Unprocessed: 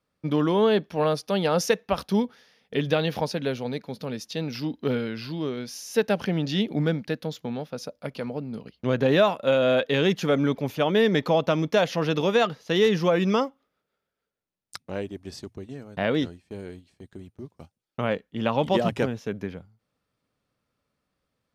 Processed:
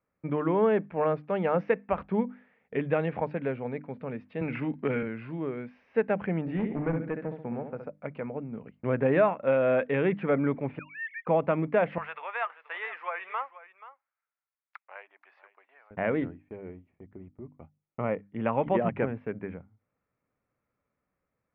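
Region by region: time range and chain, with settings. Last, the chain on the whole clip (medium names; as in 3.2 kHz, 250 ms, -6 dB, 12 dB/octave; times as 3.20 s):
4.41–5.03 s: dynamic bell 2.4 kHz, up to +7 dB, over -49 dBFS, Q 0.82 + three bands compressed up and down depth 70%
6.41–7.87 s: peaking EQ 3.5 kHz -9 dB 0.86 oct + flutter echo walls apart 11.6 m, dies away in 0.54 s + hard clipper -20 dBFS
10.79–11.27 s: formants replaced by sine waves + de-esser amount 90% + inverse Chebyshev high-pass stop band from 390 Hz, stop band 70 dB
11.98–15.91 s: high-pass 850 Hz 24 dB/octave + delay 481 ms -16 dB
16.56–18.23 s: treble shelf 3.2 kHz -9 dB + band-stop 1.6 kHz, Q 6.9
whole clip: elliptic low-pass 2.3 kHz, stop band 80 dB; hum notches 50/100/150/200/250/300 Hz; trim -2.5 dB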